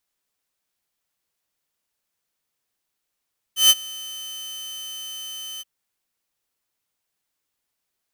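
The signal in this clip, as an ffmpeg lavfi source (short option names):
-f lavfi -i "aevalsrc='0.473*(2*mod(3060*t,1)-1)':d=2.076:s=44100,afade=t=in:d=0.14,afade=t=out:st=0.14:d=0.039:silence=0.0708,afade=t=out:st=2.05:d=0.026"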